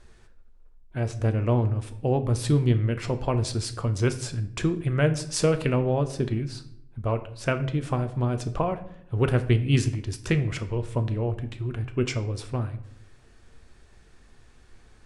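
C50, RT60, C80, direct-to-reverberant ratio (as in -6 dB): 14.0 dB, 0.75 s, 17.0 dB, 8.0 dB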